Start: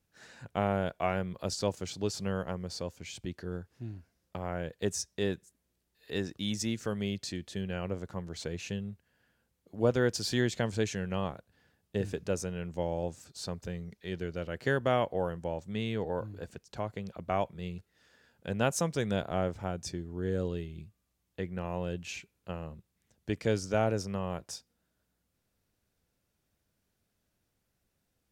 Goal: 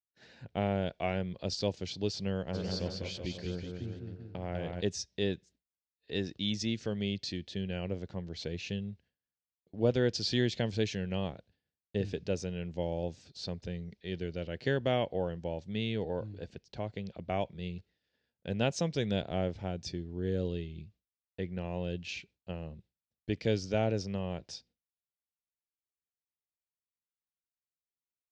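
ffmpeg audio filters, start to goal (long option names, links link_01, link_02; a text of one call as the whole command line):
ffmpeg -i in.wav -filter_complex "[0:a]agate=range=-33dB:threshold=-54dB:ratio=3:detection=peak,lowpass=frequency=4900:width=0.5412,lowpass=frequency=4900:width=1.3066,equalizer=frequency=1200:width=1.5:gain=-11,asplit=3[link_01][link_02][link_03];[link_01]afade=type=out:start_time=2.53:duration=0.02[link_04];[link_02]aecho=1:1:200|380|542|687.8|819:0.631|0.398|0.251|0.158|0.1,afade=type=in:start_time=2.53:duration=0.02,afade=type=out:start_time=4.8:duration=0.02[link_05];[link_03]afade=type=in:start_time=4.8:duration=0.02[link_06];[link_04][link_05][link_06]amix=inputs=3:normalize=0,adynamicequalizer=threshold=0.00316:dfrequency=2400:dqfactor=0.7:tfrequency=2400:tqfactor=0.7:attack=5:release=100:ratio=0.375:range=2.5:mode=boostabove:tftype=highshelf" out.wav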